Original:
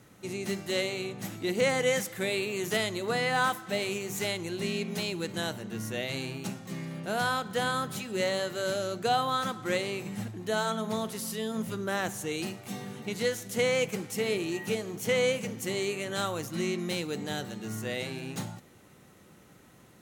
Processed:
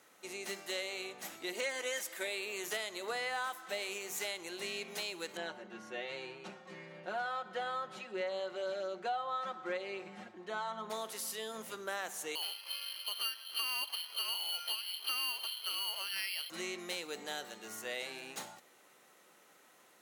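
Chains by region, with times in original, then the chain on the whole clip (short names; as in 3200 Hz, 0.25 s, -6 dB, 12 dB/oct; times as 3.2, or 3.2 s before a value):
1.53–2.27 HPF 210 Hz + notch 1300 Hz, Q 27 + comb 3.2 ms, depth 58%
5.37–10.9 tape spacing loss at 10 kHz 24 dB + comb 5.5 ms, depth 78%
12.35–16.5 air absorption 210 m + inverted band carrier 3300 Hz + careless resampling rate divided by 6×, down filtered, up hold
whole clip: HPF 550 Hz 12 dB/oct; compressor 4:1, threshold -32 dBFS; gain -2.5 dB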